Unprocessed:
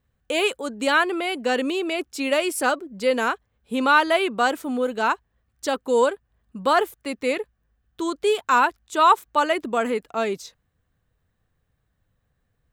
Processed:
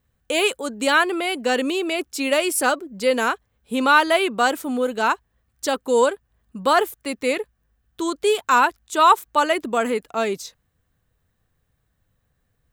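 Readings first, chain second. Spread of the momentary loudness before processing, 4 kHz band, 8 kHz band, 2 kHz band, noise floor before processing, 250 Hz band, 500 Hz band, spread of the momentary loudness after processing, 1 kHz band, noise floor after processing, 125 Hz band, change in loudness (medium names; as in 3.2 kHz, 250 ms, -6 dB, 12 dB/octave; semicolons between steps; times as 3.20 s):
11 LU, +3.0 dB, +6.0 dB, +2.0 dB, -73 dBFS, +1.5 dB, +1.5 dB, 11 LU, +1.5 dB, -71 dBFS, no reading, +2.0 dB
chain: treble shelf 6.1 kHz +6.5 dB; trim +1.5 dB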